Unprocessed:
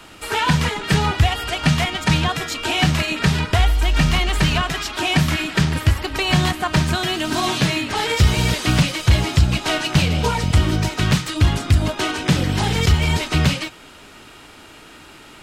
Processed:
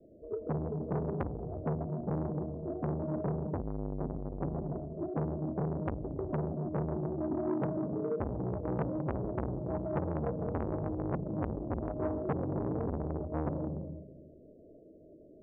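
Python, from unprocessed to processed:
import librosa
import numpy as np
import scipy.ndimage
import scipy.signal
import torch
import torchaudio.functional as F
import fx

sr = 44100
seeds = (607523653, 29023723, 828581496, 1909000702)

y = scipy.signal.sosfilt(scipy.signal.butter(16, 640.0, 'lowpass', fs=sr, output='sos'), x)
y = fx.tilt_eq(y, sr, slope=2.5)
y = fx.hum_notches(y, sr, base_hz=60, count=5)
y = fx.rev_freeverb(y, sr, rt60_s=1.3, hf_ratio=0.95, predelay_ms=95, drr_db=3.5)
y = fx.spec_gate(y, sr, threshold_db=-20, keep='strong')
y = fx.transformer_sat(y, sr, knee_hz=740.0)
y = F.gain(torch.from_numpy(y), -4.5).numpy()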